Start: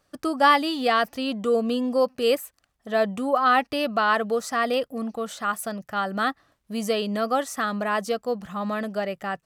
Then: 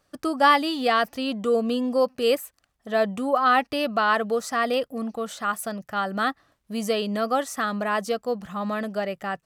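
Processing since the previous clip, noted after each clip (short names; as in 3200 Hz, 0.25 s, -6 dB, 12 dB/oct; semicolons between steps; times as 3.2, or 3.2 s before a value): nothing audible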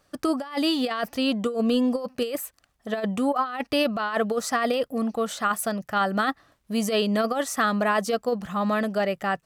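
negative-ratio compressor -24 dBFS, ratio -0.5; gain +1.5 dB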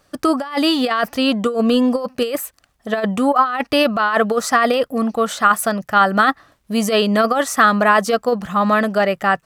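dynamic EQ 1300 Hz, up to +5 dB, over -38 dBFS, Q 1; gain +6.5 dB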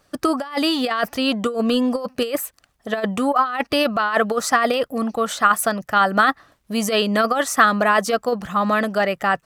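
harmonic-percussive split harmonic -4 dB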